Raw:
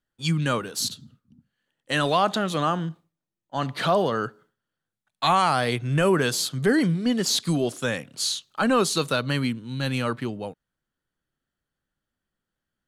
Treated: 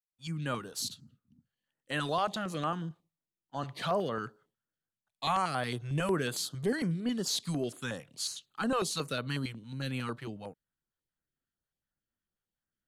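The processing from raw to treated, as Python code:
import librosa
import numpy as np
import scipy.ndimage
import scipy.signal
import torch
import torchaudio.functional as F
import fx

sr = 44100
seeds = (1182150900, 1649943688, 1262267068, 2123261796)

y = fx.fade_in_head(x, sr, length_s=0.55)
y = fx.filter_held_notch(y, sr, hz=11.0, low_hz=240.0, high_hz=5500.0)
y = F.gain(torch.from_numpy(y), -8.5).numpy()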